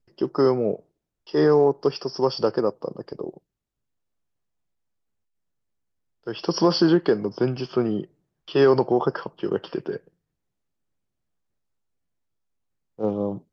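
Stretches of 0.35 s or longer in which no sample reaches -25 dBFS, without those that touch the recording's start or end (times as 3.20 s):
0.74–1.34 s
3.29–6.27 s
8.02–8.55 s
9.96–13.01 s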